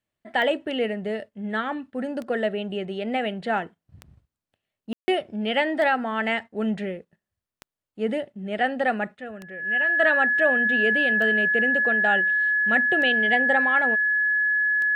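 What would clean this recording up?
click removal
notch filter 1,700 Hz, Q 30
ambience match 0:04.93–0:05.08

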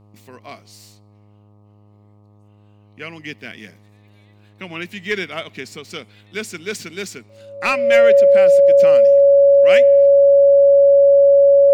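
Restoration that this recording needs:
hum removal 103.5 Hz, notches 12
notch filter 560 Hz, Q 30

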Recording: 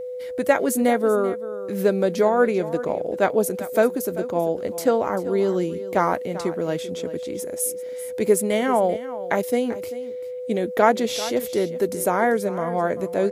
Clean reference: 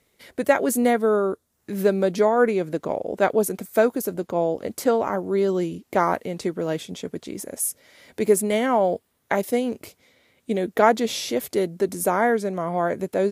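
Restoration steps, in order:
notch filter 500 Hz, Q 30
echo removal 390 ms −15 dB

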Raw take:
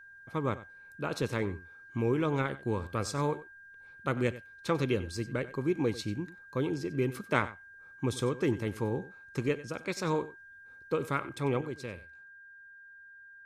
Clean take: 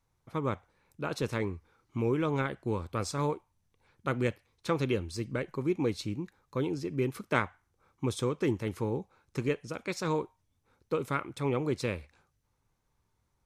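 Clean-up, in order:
notch filter 1,600 Hz, Q 30
echo removal 94 ms −16.5 dB
level correction +8.5 dB, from 0:11.61

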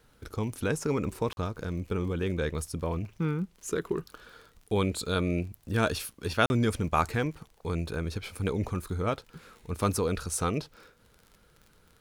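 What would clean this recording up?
click removal
repair the gap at 0:01.33/0:06.46, 41 ms

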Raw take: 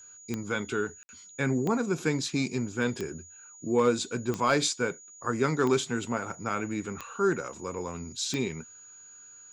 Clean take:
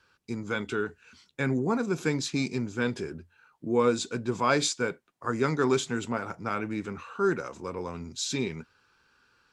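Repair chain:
clipped peaks rebuilt −14.5 dBFS
click removal
notch filter 6,800 Hz, Q 30
ambience match 0:01.03–0:01.09

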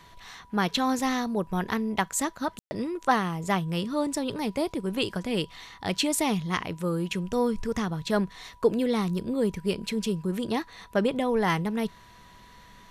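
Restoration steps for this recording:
notch filter 980 Hz, Q 30
ambience match 0:02.59–0:02.71

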